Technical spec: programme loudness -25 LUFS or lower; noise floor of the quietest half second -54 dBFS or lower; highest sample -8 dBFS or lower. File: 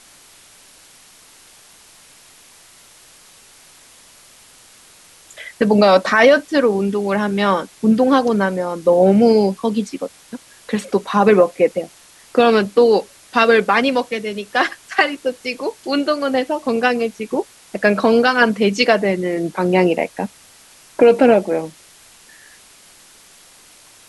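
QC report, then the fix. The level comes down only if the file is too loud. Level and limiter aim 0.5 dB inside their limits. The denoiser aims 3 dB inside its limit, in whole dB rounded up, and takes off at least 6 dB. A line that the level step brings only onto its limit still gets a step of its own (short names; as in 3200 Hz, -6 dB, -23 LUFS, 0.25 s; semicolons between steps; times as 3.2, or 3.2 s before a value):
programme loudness -16.5 LUFS: fail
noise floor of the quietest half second -47 dBFS: fail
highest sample -2.0 dBFS: fail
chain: gain -9 dB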